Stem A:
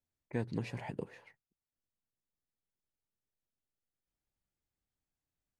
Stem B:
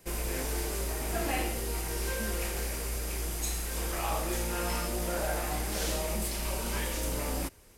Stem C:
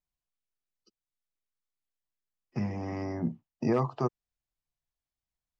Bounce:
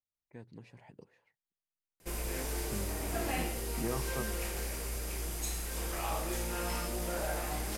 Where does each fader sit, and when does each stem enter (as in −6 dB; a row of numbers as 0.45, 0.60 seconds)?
−14.0, −3.5, −10.0 decibels; 0.00, 2.00, 0.15 seconds